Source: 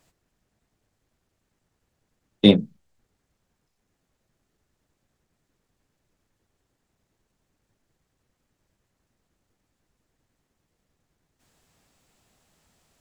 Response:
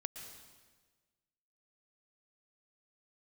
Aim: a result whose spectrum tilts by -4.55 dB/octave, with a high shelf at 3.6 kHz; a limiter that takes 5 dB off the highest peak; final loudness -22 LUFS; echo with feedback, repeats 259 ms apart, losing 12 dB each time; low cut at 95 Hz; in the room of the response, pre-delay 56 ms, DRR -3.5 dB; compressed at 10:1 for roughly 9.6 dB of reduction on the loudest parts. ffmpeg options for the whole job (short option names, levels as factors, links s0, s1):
-filter_complex "[0:a]highpass=95,highshelf=f=3600:g=7.5,acompressor=threshold=0.141:ratio=10,alimiter=limit=0.282:level=0:latency=1,aecho=1:1:259|518|777:0.251|0.0628|0.0157,asplit=2[s0][s1];[1:a]atrim=start_sample=2205,adelay=56[s2];[s1][s2]afir=irnorm=-1:irlink=0,volume=1.88[s3];[s0][s3]amix=inputs=2:normalize=0,volume=1.68"